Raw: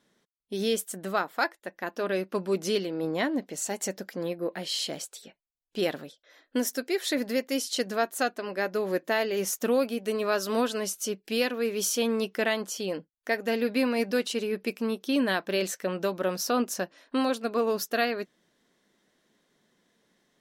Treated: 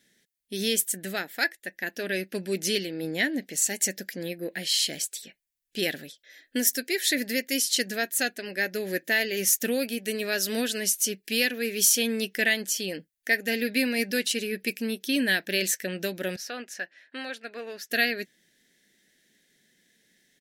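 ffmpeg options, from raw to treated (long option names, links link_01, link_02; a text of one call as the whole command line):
ffmpeg -i in.wav -filter_complex "[0:a]asettb=1/sr,asplit=3[link_01][link_02][link_03];[link_01]atrim=end=16.364[link_04];[link_02]atrim=start=16.36:end=17.9,asetpts=PTS-STARTPTS,afade=type=in:duration=0.004:curve=qsin,afade=type=out:start_time=1.536:duration=0.004:curve=qsin,bandpass=frequency=1300:width_type=q:width=1[link_05];[link_03]atrim=start=17.896[link_06];[link_04][link_05]acrossfade=duration=0.004:curve1=hsin:curve2=qsin[link_07];[link_07][link_06]acrossfade=duration=0.004:curve1=qsin:curve2=hsin,firequalizer=gain_entry='entry(220,0);entry(790,-8);entry(1100,-20);entry(1700,8);entry(2900,5);entry(11000,11)':delay=0.05:min_phase=1" out.wav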